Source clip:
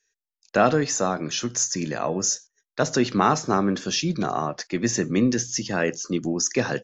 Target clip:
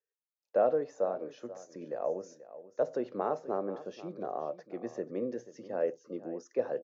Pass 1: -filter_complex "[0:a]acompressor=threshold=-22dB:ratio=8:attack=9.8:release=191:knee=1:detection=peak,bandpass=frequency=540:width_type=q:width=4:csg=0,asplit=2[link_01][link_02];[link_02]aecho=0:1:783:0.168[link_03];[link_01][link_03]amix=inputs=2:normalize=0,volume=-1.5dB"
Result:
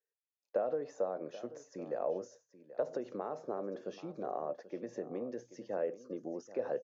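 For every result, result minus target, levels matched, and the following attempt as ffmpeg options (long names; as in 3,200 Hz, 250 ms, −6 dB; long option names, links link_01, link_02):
echo 298 ms late; downward compressor: peak gain reduction +9.5 dB
-filter_complex "[0:a]acompressor=threshold=-22dB:ratio=8:attack=9.8:release=191:knee=1:detection=peak,bandpass=frequency=540:width_type=q:width=4:csg=0,asplit=2[link_01][link_02];[link_02]aecho=0:1:485:0.168[link_03];[link_01][link_03]amix=inputs=2:normalize=0,volume=-1.5dB"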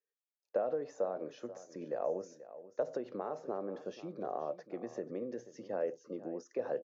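downward compressor: peak gain reduction +9.5 dB
-filter_complex "[0:a]bandpass=frequency=540:width_type=q:width=4:csg=0,asplit=2[link_01][link_02];[link_02]aecho=0:1:485:0.168[link_03];[link_01][link_03]amix=inputs=2:normalize=0,volume=-1.5dB"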